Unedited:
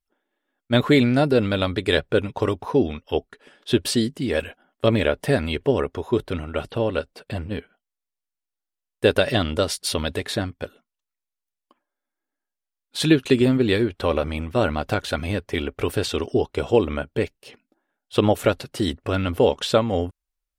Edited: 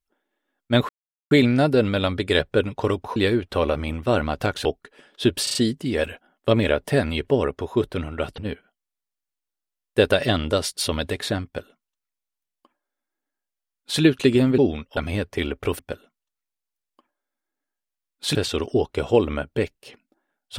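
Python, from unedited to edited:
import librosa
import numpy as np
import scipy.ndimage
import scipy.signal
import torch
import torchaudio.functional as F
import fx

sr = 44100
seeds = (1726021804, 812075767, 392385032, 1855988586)

y = fx.edit(x, sr, fx.insert_silence(at_s=0.89, length_s=0.42),
    fx.swap(start_s=2.74, length_s=0.39, other_s=13.64, other_length_s=1.49),
    fx.stutter(start_s=3.91, slice_s=0.04, count=4),
    fx.cut(start_s=6.74, length_s=0.7),
    fx.duplicate(start_s=10.51, length_s=2.56, to_s=15.95), tone=tone)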